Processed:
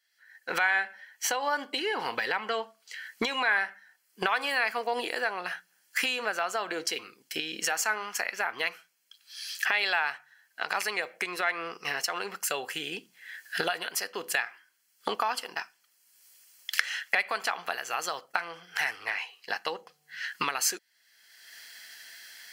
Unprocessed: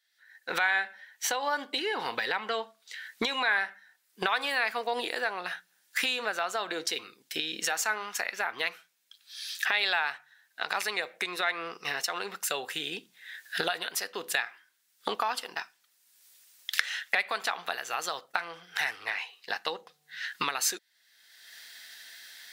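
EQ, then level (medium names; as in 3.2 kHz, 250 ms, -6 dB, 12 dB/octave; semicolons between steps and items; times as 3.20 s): Butterworth band-stop 3.7 kHz, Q 7.1; +1.0 dB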